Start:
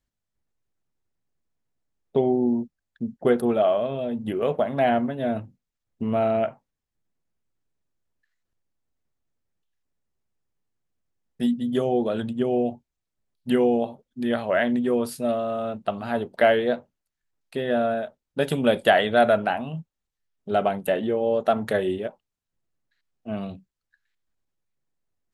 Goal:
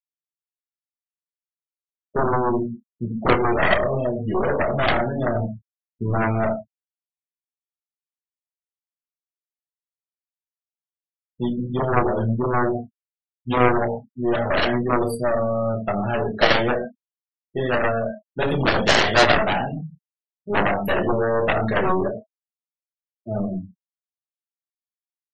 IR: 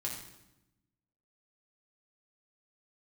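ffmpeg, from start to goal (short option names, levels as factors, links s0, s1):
-filter_complex "[1:a]atrim=start_sample=2205,afade=t=out:st=0.19:d=0.01,atrim=end_sample=8820[s0];[0:a][s0]afir=irnorm=-1:irlink=0,aeval=exprs='0.596*(cos(1*acos(clip(val(0)/0.596,-1,1)))-cos(1*PI/2))+0.106*(cos(2*acos(clip(val(0)/0.596,-1,1)))-cos(2*PI/2))+0.299*(cos(7*acos(clip(val(0)/0.596,-1,1)))-cos(7*PI/2))+0.0944*(cos(8*acos(clip(val(0)/0.596,-1,1)))-cos(8*PI/2))':c=same,afftfilt=real='re*gte(hypot(re,im),0.0708)':imag='im*gte(hypot(re,im),0.0708)':win_size=1024:overlap=0.75,asplit=2[s1][s2];[s2]adelay=28,volume=0.2[s3];[s1][s3]amix=inputs=2:normalize=0,volume=0.708"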